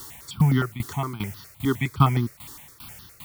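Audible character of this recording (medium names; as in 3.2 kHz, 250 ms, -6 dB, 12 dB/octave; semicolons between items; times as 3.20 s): a quantiser's noise floor 8-bit, dither triangular; tremolo saw down 2.5 Hz, depth 85%; notches that jump at a steady rate 9.7 Hz 630–2300 Hz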